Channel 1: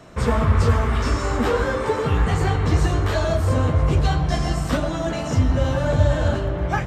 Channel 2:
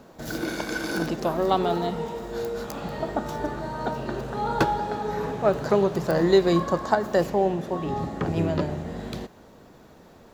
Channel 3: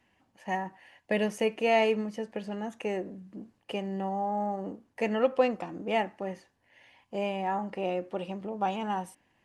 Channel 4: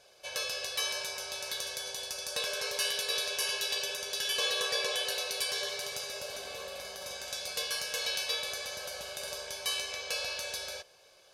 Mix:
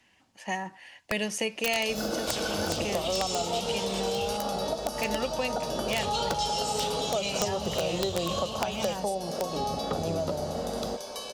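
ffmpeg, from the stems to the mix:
ffmpeg -i stem1.wav -i stem2.wav -i stem3.wav -i stem4.wav -filter_complex "[0:a]highpass=frequency=82:width=0.5412,highpass=frequency=82:width=1.3066,highshelf=frequency=2200:width_type=q:width=3:gain=9.5,acompressor=threshold=-21dB:ratio=6,adelay=2100,volume=-15dB,asplit=3[link_01][link_02][link_03];[link_01]atrim=end=4.37,asetpts=PTS-STARTPTS,afade=type=out:start_time=4.366:duration=0.004:curve=hsin[link_04];[link_02]atrim=start=4.37:end=5.92,asetpts=PTS-STARTPTS,volume=0[link_05];[link_03]atrim=start=5.92,asetpts=PTS-STARTPTS,afade=type=in:duration=0.004:curve=hsin[link_06];[link_04][link_05][link_06]concat=n=3:v=0:a=1[link_07];[1:a]aecho=1:1:1.5:0.52,adelay=1700,volume=-6dB[link_08];[2:a]volume=1dB[link_09];[3:a]acompressor=threshold=-39dB:ratio=2,adelay=1500,volume=-6.5dB[link_10];[link_08][link_10]amix=inputs=2:normalize=0,equalizer=frequency=125:width_type=o:width=1:gain=-6,equalizer=frequency=250:width_type=o:width=1:gain=8,equalizer=frequency=500:width_type=o:width=1:gain=10,equalizer=frequency=1000:width_type=o:width=1:gain=11,equalizer=frequency=2000:width_type=o:width=1:gain=-9,equalizer=frequency=4000:width_type=o:width=1:gain=-3,equalizer=frequency=8000:width_type=o:width=1:gain=-5,acompressor=threshold=-20dB:ratio=2.5,volume=0dB[link_11];[link_07][link_09][link_11]amix=inputs=3:normalize=0,equalizer=frequency=5600:width=0.41:gain=11.5,acrossover=split=160|3000[link_12][link_13][link_14];[link_13]acompressor=threshold=-29dB:ratio=4[link_15];[link_12][link_15][link_14]amix=inputs=3:normalize=0,aeval=exprs='(mod(7.08*val(0)+1,2)-1)/7.08':channel_layout=same" out.wav

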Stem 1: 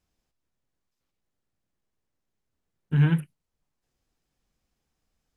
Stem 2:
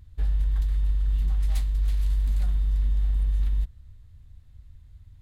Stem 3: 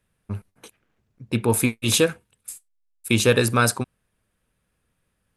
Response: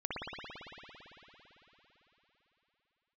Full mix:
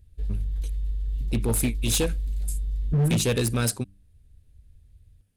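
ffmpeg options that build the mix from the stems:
-filter_complex "[0:a]lowpass=1100,volume=3dB,asplit=2[link_01][link_02];[1:a]equalizer=frequency=430:width_type=o:width=0.44:gain=10,volume=-4.5dB[link_03];[2:a]volume=-1dB[link_04];[link_02]apad=whole_len=229774[link_05];[link_03][link_05]sidechaincompress=threshold=-30dB:ratio=8:attack=16:release=1060[link_06];[link_01][link_06][link_04]amix=inputs=3:normalize=0,equalizer=frequency=1100:width=0.75:gain=-14,bandreject=frequency=97.53:width_type=h:width=4,bandreject=frequency=195.06:width_type=h:width=4,bandreject=frequency=292.59:width_type=h:width=4,asoftclip=type=hard:threshold=-18.5dB"

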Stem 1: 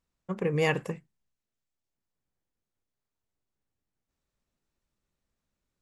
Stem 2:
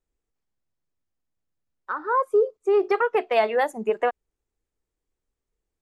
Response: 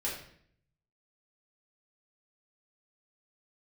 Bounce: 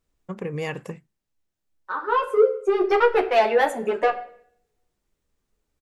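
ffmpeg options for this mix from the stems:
-filter_complex "[0:a]acompressor=threshold=-32dB:ratio=2,volume=2dB,asplit=2[link_01][link_02];[1:a]acontrast=32,asoftclip=type=tanh:threshold=-10dB,asplit=2[link_03][link_04];[link_04]adelay=10,afreqshift=-2.3[link_05];[link_03][link_05]amix=inputs=2:normalize=1,volume=0.5dB,asplit=2[link_06][link_07];[link_07]volume=-9.5dB[link_08];[link_02]apad=whole_len=256680[link_09];[link_06][link_09]sidechaincompress=threshold=-56dB:ratio=4:attack=40:release=807[link_10];[2:a]atrim=start_sample=2205[link_11];[link_08][link_11]afir=irnorm=-1:irlink=0[link_12];[link_01][link_10][link_12]amix=inputs=3:normalize=0"

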